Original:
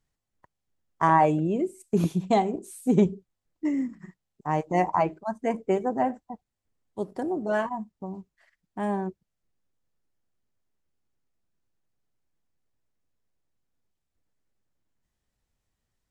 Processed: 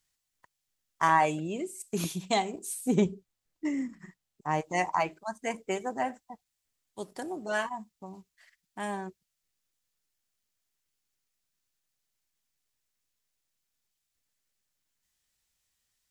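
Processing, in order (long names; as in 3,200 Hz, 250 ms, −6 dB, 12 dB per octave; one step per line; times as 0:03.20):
tilt shelving filter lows −9.5 dB, about 1,400 Hz, from 0:02.73 lows −5 dB, from 0:04.64 lows −10 dB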